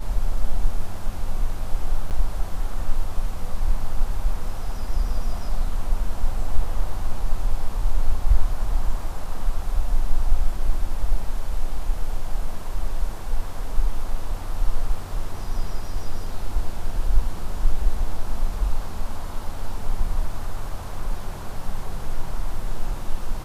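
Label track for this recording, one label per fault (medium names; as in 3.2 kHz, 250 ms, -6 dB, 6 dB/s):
2.100000	2.110000	dropout 8.7 ms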